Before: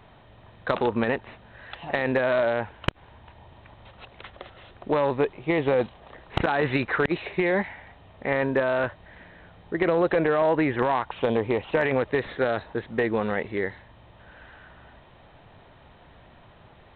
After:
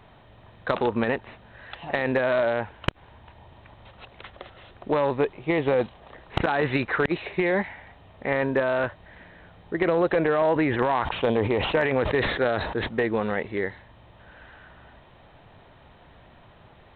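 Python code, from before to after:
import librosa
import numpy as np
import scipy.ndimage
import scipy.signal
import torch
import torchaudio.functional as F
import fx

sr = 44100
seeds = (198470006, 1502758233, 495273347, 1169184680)

y = fx.sustainer(x, sr, db_per_s=46.0, at=(10.55, 12.87), fade=0.02)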